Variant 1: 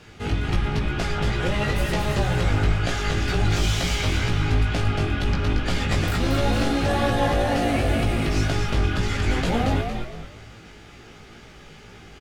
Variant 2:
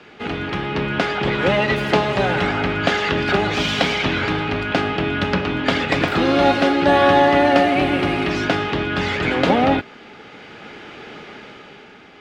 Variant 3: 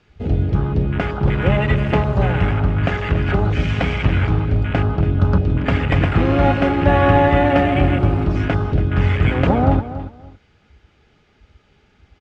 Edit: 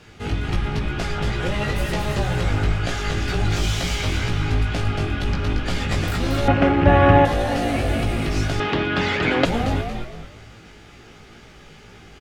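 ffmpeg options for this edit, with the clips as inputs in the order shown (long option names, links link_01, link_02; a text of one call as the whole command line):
ffmpeg -i take0.wav -i take1.wav -i take2.wav -filter_complex "[0:a]asplit=3[link_01][link_02][link_03];[link_01]atrim=end=6.482[link_04];[2:a]atrim=start=6.478:end=7.252[link_05];[link_02]atrim=start=7.248:end=8.602[link_06];[1:a]atrim=start=8.598:end=9.452[link_07];[link_03]atrim=start=9.448[link_08];[link_04][link_05]acrossfade=duration=0.004:curve1=hsin:curve2=hsin[link_09];[link_09][link_06]acrossfade=duration=0.004:curve1=hsin:curve2=hsin[link_10];[link_10][link_07]acrossfade=duration=0.004:curve1=hsin:curve2=hsin[link_11];[link_11][link_08]acrossfade=duration=0.004:curve1=hsin:curve2=hsin" out.wav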